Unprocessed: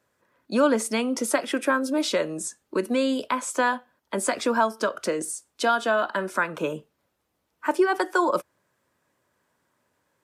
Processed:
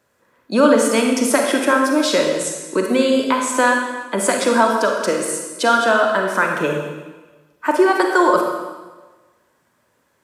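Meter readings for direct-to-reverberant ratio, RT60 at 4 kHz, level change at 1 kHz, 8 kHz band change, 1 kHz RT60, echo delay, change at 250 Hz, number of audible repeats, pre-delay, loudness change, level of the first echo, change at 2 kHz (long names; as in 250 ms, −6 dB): 1.5 dB, 1.2 s, +8.0 dB, +8.0 dB, 1.3 s, no echo audible, +8.0 dB, no echo audible, 29 ms, +8.0 dB, no echo audible, +8.5 dB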